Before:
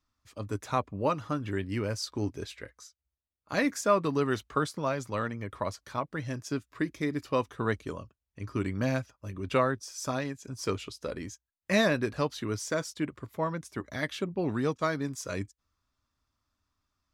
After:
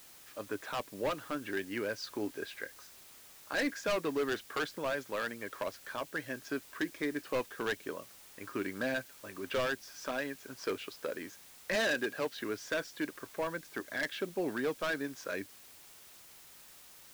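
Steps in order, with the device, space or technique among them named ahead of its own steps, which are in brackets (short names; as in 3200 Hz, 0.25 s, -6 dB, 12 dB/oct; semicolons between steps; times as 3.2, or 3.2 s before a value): drive-through speaker (BPF 360–3400 Hz; bell 1600 Hz +10 dB 0.23 oct; hard clip -26 dBFS, distortion -8 dB; white noise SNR 20 dB); dynamic EQ 1100 Hz, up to -7 dB, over -46 dBFS, Q 1.1; 11.75–12.33 HPF 120 Hz; gain +1 dB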